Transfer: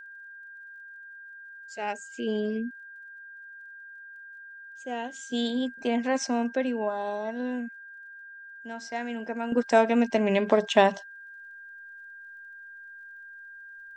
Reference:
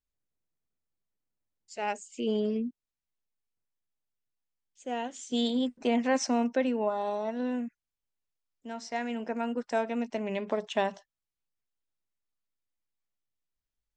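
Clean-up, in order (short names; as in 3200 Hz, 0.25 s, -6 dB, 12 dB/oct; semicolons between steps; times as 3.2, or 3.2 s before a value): de-click; notch 1600 Hz, Q 30; gain 0 dB, from 9.52 s -9 dB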